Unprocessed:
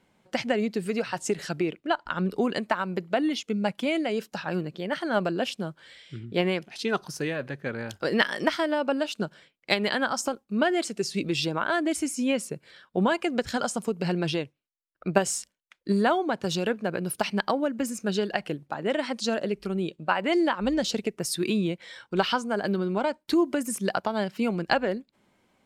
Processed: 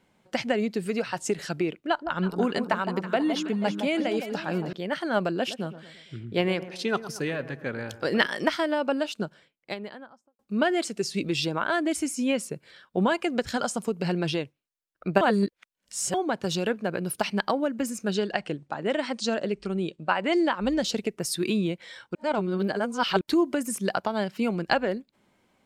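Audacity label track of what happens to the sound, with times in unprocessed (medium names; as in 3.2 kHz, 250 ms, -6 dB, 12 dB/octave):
1.740000	4.730000	echo whose repeats swap between lows and highs 162 ms, split 1.1 kHz, feedback 65%, level -7 dB
5.360000	8.260000	feedback echo behind a low-pass 115 ms, feedback 47%, low-pass 1.7 kHz, level -13 dB
8.940000	10.390000	studio fade out
15.210000	16.140000	reverse
18.140000	20.540000	brick-wall FIR low-pass 9.3 kHz
22.150000	23.210000	reverse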